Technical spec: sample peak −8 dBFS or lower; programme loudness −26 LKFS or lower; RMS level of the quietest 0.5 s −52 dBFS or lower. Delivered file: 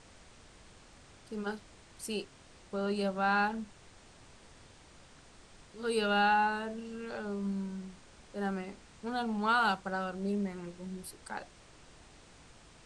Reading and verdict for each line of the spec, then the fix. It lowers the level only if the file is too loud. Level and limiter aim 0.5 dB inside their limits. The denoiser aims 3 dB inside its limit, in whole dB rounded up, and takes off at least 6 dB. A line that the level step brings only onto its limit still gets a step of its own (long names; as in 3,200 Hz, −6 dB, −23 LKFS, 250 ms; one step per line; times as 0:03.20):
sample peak −18.5 dBFS: in spec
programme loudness −34.0 LKFS: in spec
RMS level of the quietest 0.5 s −57 dBFS: in spec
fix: no processing needed